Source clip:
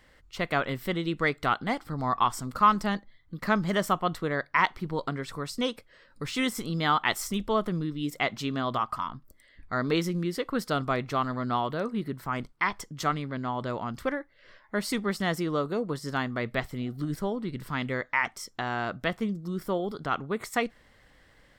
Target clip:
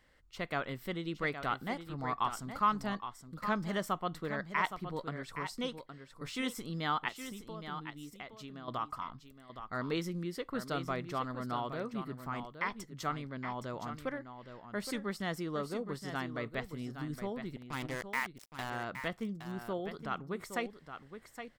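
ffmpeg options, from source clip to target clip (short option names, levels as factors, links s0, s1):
-filter_complex "[0:a]asettb=1/sr,asplit=3[s0][s1][s2];[s0]atrim=end=7.084[s3];[s1]atrim=start=7.08:end=8.68,asetpts=PTS-STARTPTS,afade=t=in:d=0.004:c=qsin,afade=t=out:st=1.596:d=0.004:c=qsin,acompressor=threshold=0.0158:ratio=6[s4];[s2]atrim=start=8.676[s5];[s3][s4]acrossfade=d=0.004:c1=hsin:c2=qsin[s6];[s6][s5]acrossfade=d=0.004:c1=qsin:c2=hsin,asettb=1/sr,asplit=3[s7][s8][s9];[s7]atrim=end=17.564[s10];[s8]atrim=start=17.56:end=18.7,asetpts=PTS-STARTPTS,afade=t=in:d=0.004:c=qsin,afade=t=out:st=1.136:d=0.004:c=qsin,acrusher=bits=4:mix=0:aa=0.5[s11];[s9]atrim=start=18.696[s12];[s10][s11]acrossfade=d=0.004:c1=hsin:c2=qsin[s13];[s13][s12]acrossfade=d=0.004:c1=qsin:c2=hsin,aecho=1:1:817:0.335,volume=0.376"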